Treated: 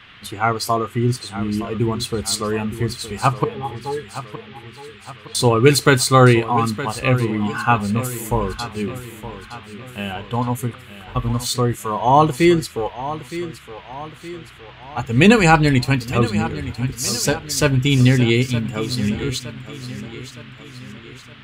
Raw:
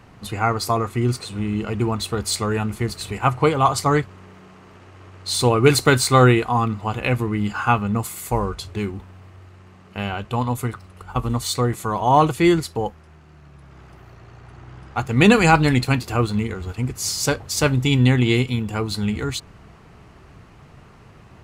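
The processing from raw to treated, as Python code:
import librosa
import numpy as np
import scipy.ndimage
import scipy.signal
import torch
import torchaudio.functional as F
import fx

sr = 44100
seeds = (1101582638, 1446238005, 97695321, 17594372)

p1 = fx.noise_reduce_blind(x, sr, reduce_db=8)
p2 = fx.octave_resonator(p1, sr, note='G#', decay_s=0.11, at=(3.44, 5.35))
p3 = fx.dmg_noise_band(p2, sr, seeds[0], low_hz=1100.0, high_hz=3400.0, level_db=-48.0)
p4 = p3 + fx.echo_feedback(p3, sr, ms=916, feedback_pct=49, wet_db=-13.5, dry=0)
y = F.gain(torch.from_numpy(p4), 2.0).numpy()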